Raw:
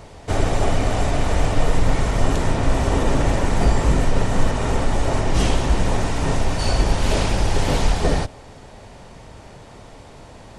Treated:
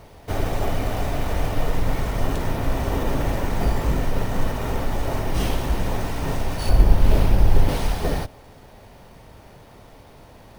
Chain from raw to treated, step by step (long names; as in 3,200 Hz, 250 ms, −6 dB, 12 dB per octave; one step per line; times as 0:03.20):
0:06.69–0:07.69: spectral tilt −2 dB per octave
bad sample-rate conversion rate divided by 3×, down filtered, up hold
level −4.5 dB